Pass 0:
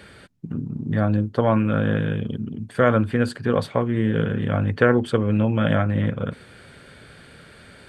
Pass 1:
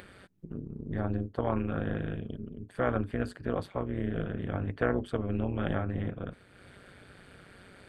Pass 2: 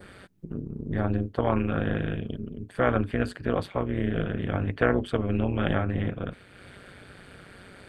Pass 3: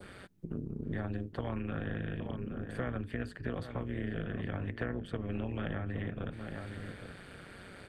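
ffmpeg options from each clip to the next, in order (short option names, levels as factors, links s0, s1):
-af "acompressor=mode=upward:threshold=0.02:ratio=2.5,equalizer=f=5500:t=o:w=1.8:g=-4.5,tremolo=f=190:d=0.824,volume=0.422"
-af "adynamicequalizer=threshold=0.00178:dfrequency=2700:dqfactor=1.2:tfrequency=2700:tqfactor=1.2:attack=5:release=100:ratio=0.375:range=2.5:mode=boostabove:tftype=bell,volume=1.78"
-filter_complex "[0:a]adynamicequalizer=threshold=0.00251:dfrequency=1800:dqfactor=6.9:tfrequency=1800:tqfactor=6.9:attack=5:release=100:ratio=0.375:range=3.5:mode=boostabove:tftype=bell,asplit=2[s0][s1];[s1]adelay=816.3,volume=0.2,highshelf=f=4000:g=-18.4[s2];[s0][s2]amix=inputs=2:normalize=0,acrossover=split=270|2700[s3][s4][s5];[s3]acompressor=threshold=0.02:ratio=4[s6];[s4]acompressor=threshold=0.0112:ratio=4[s7];[s5]acompressor=threshold=0.002:ratio=4[s8];[s6][s7][s8]amix=inputs=3:normalize=0,volume=0.794"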